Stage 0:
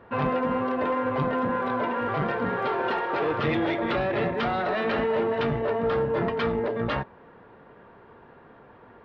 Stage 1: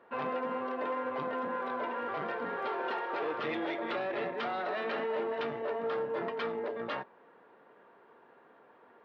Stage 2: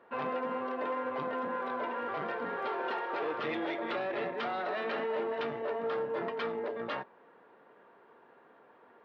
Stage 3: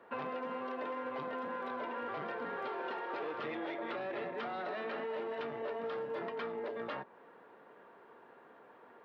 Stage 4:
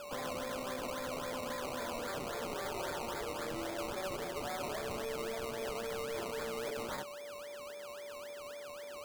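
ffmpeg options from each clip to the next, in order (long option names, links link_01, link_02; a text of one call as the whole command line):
ffmpeg -i in.wav -af "highpass=310,volume=-7.5dB" out.wav
ffmpeg -i in.wav -af anull out.wav
ffmpeg -i in.wav -filter_complex "[0:a]acrossover=split=350|2300[link_01][link_02][link_03];[link_01]acompressor=threshold=-49dB:ratio=4[link_04];[link_02]acompressor=threshold=-41dB:ratio=4[link_05];[link_03]acompressor=threshold=-56dB:ratio=4[link_06];[link_04][link_05][link_06]amix=inputs=3:normalize=0,volume=1.5dB" out.wav
ffmpeg -i in.wav -af "aeval=exprs='0.015*(abs(mod(val(0)/0.015+3,4)-2)-1)':channel_layout=same,aeval=exprs='val(0)+0.00562*sin(2*PI*580*n/s)':channel_layout=same,acrusher=samples=21:mix=1:aa=0.000001:lfo=1:lforange=12.6:lforate=3.7,volume=1.5dB" out.wav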